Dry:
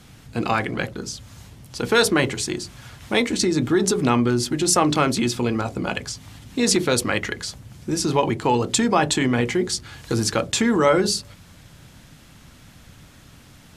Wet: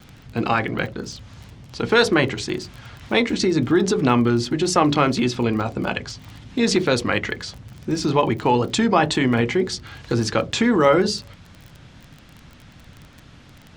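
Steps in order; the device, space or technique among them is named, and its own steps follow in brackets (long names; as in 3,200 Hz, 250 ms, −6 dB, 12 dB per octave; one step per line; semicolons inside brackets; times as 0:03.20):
lo-fi chain (low-pass filter 4,600 Hz 12 dB per octave; tape wow and flutter; surface crackle 24 per second −32 dBFS)
level +1.5 dB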